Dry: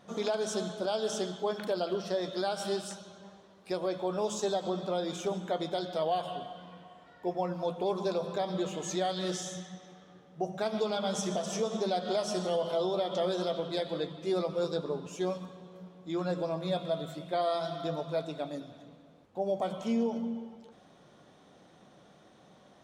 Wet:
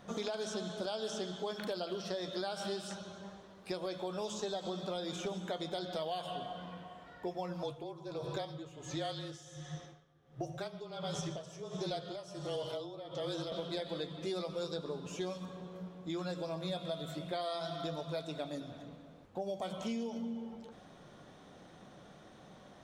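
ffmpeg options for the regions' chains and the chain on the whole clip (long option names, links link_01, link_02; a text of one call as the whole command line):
ffmpeg -i in.wav -filter_complex "[0:a]asettb=1/sr,asplit=3[link_01][link_02][link_03];[link_01]atrim=end=7.634[link_04];[link_02]atrim=start=7.63:end=13.52,asetpts=PTS-STARTPTS,afade=type=in:duration=0.004:curve=qsin,afade=type=out:start_time=5.886:duration=0.004:curve=qsin,afreqshift=-29,aeval=exprs='val(0)*pow(10,-18*(0.5-0.5*cos(2*PI*1.4*n/s))/20)':channel_layout=same[link_05];[link_03]atrim=start=13.516[link_06];[link_04][link_05]acrossfade=duration=0.004:curve1=hsin:curve2=qsin[link_07];[link_07][link_06]acrossfade=duration=0.004:curve1=qsin:curve2=hsin,lowshelf=frequency=77:gain=11,acrossover=split=2600|5300[link_08][link_09][link_10];[link_08]acompressor=threshold=-39dB:ratio=4[link_11];[link_09]acompressor=threshold=-48dB:ratio=4[link_12];[link_10]acompressor=threshold=-57dB:ratio=4[link_13];[link_11][link_12][link_13]amix=inputs=3:normalize=0,equalizer=frequency=1600:width=1.5:gain=2,volume=1.5dB" out.wav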